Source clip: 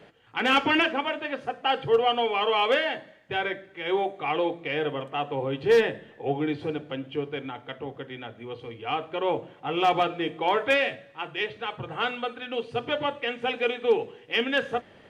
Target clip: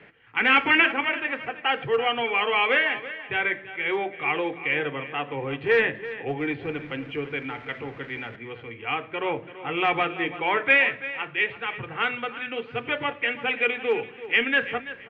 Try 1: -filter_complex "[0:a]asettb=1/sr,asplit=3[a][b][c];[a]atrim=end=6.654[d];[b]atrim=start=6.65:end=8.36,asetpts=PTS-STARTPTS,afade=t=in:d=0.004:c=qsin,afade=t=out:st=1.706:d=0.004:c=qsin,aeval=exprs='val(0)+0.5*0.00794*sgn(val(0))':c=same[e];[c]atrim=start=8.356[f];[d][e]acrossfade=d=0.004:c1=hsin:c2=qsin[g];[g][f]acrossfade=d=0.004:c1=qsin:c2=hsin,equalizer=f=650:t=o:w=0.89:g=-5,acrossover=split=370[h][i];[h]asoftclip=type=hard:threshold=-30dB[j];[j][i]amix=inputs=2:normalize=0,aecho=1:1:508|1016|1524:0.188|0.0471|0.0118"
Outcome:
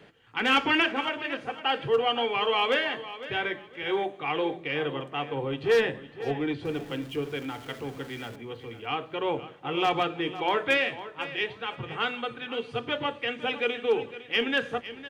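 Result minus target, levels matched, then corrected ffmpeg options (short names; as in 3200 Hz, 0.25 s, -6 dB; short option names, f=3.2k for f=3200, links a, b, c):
echo 0.173 s late; 2000 Hz band -3.5 dB
-filter_complex "[0:a]asettb=1/sr,asplit=3[a][b][c];[a]atrim=end=6.654[d];[b]atrim=start=6.65:end=8.36,asetpts=PTS-STARTPTS,afade=t=in:d=0.004:c=qsin,afade=t=out:st=1.706:d=0.004:c=qsin,aeval=exprs='val(0)+0.5*0.00794*sgn(val(0))':c=same[e];[c]atrim=start=8.356[f];[d][e]acrossfade=d=0.004:c1=hsin:c2=qsin[g];[g][f]acrossfade=d=0.004:c1=qsin:c2=hsin,lowpass=f=2.2k:t=q:w=3,equalizer=f=650:t=o:w=0.89:g=-5,acrossover=split=370[h][i];[h]asoftclip=type=hard:threshold=-30dB[j];[j][i]amix=inputs=2:normalize=0,aecho=1:1:335|670|1005:0.188|0.0471|0.0118"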